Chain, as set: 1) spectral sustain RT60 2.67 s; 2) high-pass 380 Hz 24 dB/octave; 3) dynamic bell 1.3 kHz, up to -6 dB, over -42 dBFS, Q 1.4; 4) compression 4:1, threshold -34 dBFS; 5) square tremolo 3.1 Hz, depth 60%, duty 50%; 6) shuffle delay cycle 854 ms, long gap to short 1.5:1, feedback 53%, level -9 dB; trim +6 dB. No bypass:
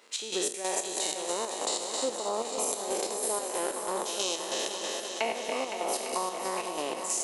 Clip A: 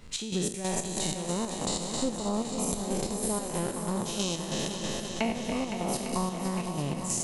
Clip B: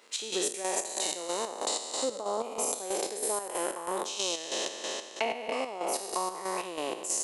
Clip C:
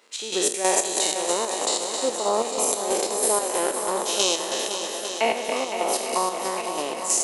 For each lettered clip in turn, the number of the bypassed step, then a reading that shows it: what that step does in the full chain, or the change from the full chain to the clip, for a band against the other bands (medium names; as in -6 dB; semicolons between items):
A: 2, 250 Hz band +12.0 dB; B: 6, echo-to-direct -5.5 dB to none; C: 4, mean gain reduction 6.5 dB